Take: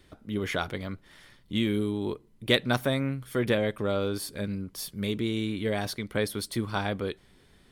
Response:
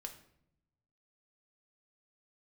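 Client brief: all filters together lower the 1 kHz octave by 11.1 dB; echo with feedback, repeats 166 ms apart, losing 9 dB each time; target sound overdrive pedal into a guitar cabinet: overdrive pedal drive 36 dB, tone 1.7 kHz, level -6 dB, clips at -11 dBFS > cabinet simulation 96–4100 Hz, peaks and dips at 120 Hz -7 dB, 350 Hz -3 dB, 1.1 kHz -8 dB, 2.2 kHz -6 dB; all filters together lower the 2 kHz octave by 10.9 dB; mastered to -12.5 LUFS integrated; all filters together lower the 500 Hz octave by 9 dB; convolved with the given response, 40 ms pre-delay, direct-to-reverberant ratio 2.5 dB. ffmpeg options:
-filter_complex "[0:a]equalizer=f=500:t=o:g=-7.5,equalizer=f=1000:t=o:g=-8.5,equalizer=f=2000:t=o:g=-7,aecho=1:1:166|332|498|664:0.355|0.124|0.0435|0.0152,asplit=2[s0][s1];[1:a]atrim=start_sample=2205,adelay=40[s2];[s1][s2]afir=irnorm=-1:irlink=0,volume=1.12[s3];[s0][s3]amix=inputs=2:normalize=0,asplit=2[s4][s5];[s5]highpass=f=720:p=1,volume=63.1,asoftclip=type=tanh:threshold=0.282[s6];[s4][s6]amix=inputs=2:normalize=0,lowpass=f=1700:p=1,volume=0.501,highpass=96,equalizer=f=120:t=q:w=4:g=-7,equalizer=f=350:t=q:w=4:g=-3,equalizer=f=1100:t=q:w=4:g=-8,equalizer=f=2200:t=q:w=4:g=-6,lowpass=f=4100:w=0.5412,lowpass=f=4100:w=1.3066,volume=3.16"

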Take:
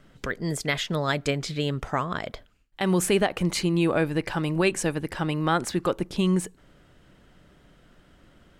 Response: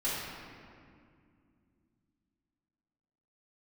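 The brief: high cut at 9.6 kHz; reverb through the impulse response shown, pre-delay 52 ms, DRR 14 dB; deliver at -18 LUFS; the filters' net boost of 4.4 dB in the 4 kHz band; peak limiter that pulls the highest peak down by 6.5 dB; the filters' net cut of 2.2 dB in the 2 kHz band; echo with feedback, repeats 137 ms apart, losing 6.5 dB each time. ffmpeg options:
-filter_complex "[0:a]lowpass=9600,equalizer=f=2000:t=o:g=-5,equalizer=f=4000:t=o:g=7.5,alimiter=limit=0.168:level=0:latency=1,aecho=1:1:137|274|411|548|685|822:0.473|0.222|0.105|0.0491|0.0231|0.0109,asplit=2[s0][s1];[1:a]atrim=start_sample=2205,adelay=52[s2];[s1][s2]afir=irnorm=-1:irlink=0,volume=0.0841[s3];[s0][s3]amix=inputs=2:normalize=0,volume=2.66"

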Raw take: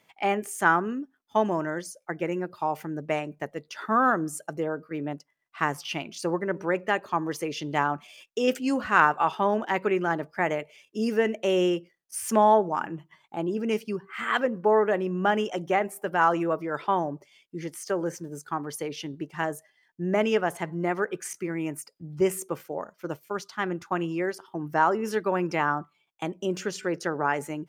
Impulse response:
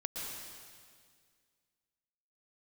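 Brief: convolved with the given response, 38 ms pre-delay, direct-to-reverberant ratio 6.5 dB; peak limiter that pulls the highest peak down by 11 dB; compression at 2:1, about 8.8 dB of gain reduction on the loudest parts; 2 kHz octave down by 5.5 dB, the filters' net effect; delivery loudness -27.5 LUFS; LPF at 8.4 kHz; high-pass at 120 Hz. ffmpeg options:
-filter_complex "[0:a]highpass=120,lowpass=8400,equalizer=f=2000:t=o:g=-8,acompressor=threshold=0.0224:ratio=2,alimiter=level_in=1.58:limit=0.0631:level=0:latency=1,volume=0.631,asplit=2[s0][s1];[1:a]atrim=start_sample=2205,adelay=38[s2];[s1][s2]afir=irnorm=-1:irlink=0,volume=0.398[s3];[s0][s3]amix=inputs=2:normalize=0,volume=3.35"

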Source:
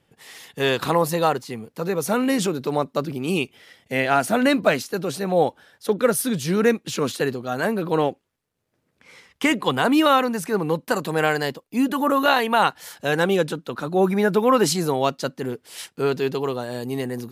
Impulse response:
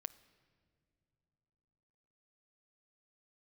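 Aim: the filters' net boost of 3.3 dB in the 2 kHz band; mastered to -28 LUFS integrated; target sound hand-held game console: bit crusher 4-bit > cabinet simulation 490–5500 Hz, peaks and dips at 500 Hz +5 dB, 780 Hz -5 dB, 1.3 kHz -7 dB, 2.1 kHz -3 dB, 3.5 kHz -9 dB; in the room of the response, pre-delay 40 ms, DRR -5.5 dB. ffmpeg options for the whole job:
-filter_complex "[0:a]equalizer=f=2000:t=o:g=8.5,asplit=2[s0][s1];[1:a]atrim=start_sample=2205,adelay=40[s2];[s1][s2]afir=irnorm=-1:irlink=0,volume=2.99[s3];[s0][s3]amix=inputs=2:normalize=0,acrusher=bits=3:mix=0:aa=0.000001,highpass=490,equalizer=f=500:t=q:w=4:g=5,equalizer=f=780:t=q:w=4:g=-5,equalizer=f=1300:t=q:w=4:g=-7,equalizer=f=2100:t=q:w=4:g=-3,equalizer=f=3500:t=q:w=4:g=-9,lowpass=f=5500:w=0.5412,lowpass=f=5500:w=1.3066,volume=0.266"

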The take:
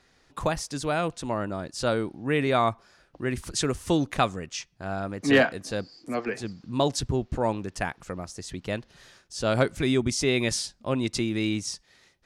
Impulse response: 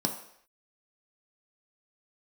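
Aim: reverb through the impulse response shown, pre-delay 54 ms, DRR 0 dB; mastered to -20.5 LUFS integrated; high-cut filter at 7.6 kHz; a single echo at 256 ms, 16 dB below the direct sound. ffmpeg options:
-filter_complex "[0:a]lowpass=7600,aecho=1:1:256:0.158,asplit=2[s0][s1];[1:a]atrim=start_sample=2205,adelay=54[s2];[s1][s2]afir=irnorm=-1:irlink=0,volume=0.473[s3];[s0][s3]amix=inputs=2:normalize=0,volume=1.19"

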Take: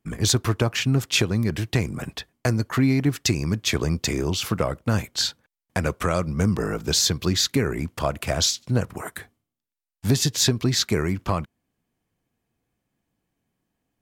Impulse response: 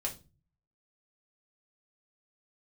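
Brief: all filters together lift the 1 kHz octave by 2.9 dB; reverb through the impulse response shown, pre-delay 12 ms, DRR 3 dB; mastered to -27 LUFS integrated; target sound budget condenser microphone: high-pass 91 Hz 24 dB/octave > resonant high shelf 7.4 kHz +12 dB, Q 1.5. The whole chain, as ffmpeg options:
-filter_complex "[0:a]equalizer=f=1000:t=o:g=4,asplit=2[s0][s1];[1:a]atrim=start_sample=2205,adelay=12[s2];[s1][s2]afir=irnorm=-1:irlink=0,volume=0.562[s3];[s0][s3]amix=inputs=2:normalize=0,highpass=f=91:w=0.5412,highpass=f=91:w=1.3066,highshelf=f=7400:t=q:w=1.5:g=12,volume=0.473"

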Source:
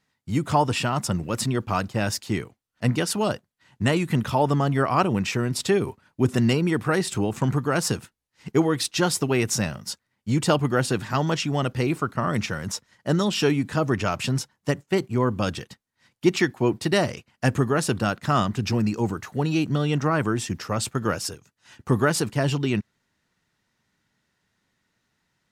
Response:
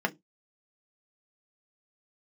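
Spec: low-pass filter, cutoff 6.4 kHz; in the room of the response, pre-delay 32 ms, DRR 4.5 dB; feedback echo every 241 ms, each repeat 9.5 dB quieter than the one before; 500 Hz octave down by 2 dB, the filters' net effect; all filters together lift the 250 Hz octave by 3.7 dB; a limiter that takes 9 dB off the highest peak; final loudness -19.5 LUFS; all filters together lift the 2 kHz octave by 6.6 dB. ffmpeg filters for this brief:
-filter_complex "[0:a]lowpass=6400,equalizer=f=250:t=o:g=6.5,equalizer=f=500:t=o:g=-6,equalizer=f=2000:t=o:g=9,alimiter=limit=0.282:level=0:latency=1,aecho=1:1:241|482|723|964:0.335|0.111|0.0365|0.012,asplit=2[s0][s1];[1:a]atrim=start_sample=2205,adelay=32[s2];[s1][s2]afir=irnorm=-1:irlink=0,volume=0.2[s3];[s0][s3]amix=inputs=2:normalize=0,volume=1.26"

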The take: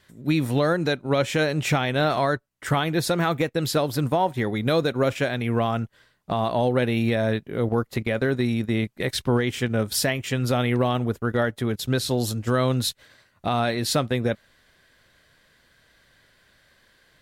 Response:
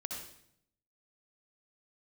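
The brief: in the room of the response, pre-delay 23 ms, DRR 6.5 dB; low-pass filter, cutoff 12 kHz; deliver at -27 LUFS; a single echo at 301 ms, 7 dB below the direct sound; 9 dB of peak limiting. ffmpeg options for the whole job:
-filter_complex "[0:a]lowpass=12000,alimiter=limit=0.0944:level=0:latency=1,aecho=1:1:301:0.447,asplit=2[s0][s1];[1:a]atrim=start_sample=2205,adelay=23[s2];[s1][s2]afir=irnorm=-1:irlink=0,volume=0.473[s3];[s0][s3]amix=inputs=2:normalize=0,volume=1.19"

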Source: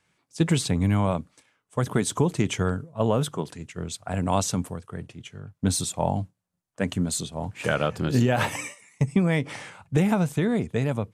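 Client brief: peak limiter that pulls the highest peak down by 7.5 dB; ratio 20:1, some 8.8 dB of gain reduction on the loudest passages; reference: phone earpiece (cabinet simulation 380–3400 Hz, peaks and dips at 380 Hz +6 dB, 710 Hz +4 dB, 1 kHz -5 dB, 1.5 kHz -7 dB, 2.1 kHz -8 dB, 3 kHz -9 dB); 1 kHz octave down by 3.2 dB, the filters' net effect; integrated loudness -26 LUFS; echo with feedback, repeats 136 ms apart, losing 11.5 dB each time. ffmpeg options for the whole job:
-af "equalizer=f=1000:t=o:g=-4,acompressor=threshold=0.0562:ratio=20,alimiter=limit=0.0841:level=0:latency=1,highpass=380,equalizer=f=380:t=q:w=4:g=6,equalizer=f=710:t=q:w=4:g=4,equalizer=f=1000:t=q:w=4:g=-5,equalizer=f=1500:t=q:w=4:g=-7,equalizer=f=2100:t=q:w=4:g=-8,equalizer=f=3000:t=q:w=4:g=-9,lowpass=f=3400:w=0.5412,lowpass=f=3400:w=1.3066,aecho=1:1:136|272|408:0.266|0.0718|0.0194,volume=4.47"

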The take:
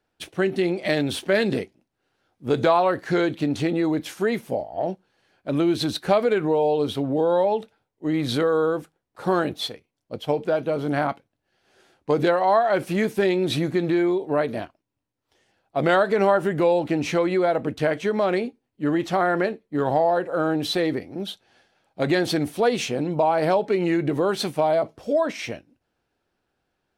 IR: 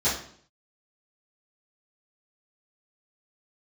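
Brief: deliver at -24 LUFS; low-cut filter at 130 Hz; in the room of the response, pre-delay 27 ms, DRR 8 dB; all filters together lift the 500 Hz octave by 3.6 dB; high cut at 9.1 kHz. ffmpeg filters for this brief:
-filter_complex "[0:a]highpass=130,lowpass=9100,equalizer=f=500:t=o:g=4.5,asplit=2[s0][s1];[1:a]atrim=start_sample=2205,adelay=27[s2];[s1][s2]afir=irnorm=-1:irlink=0,volume=0.0944[s3];[s0][s3]amix=inputs=2:normalize=0,volume=0.596"

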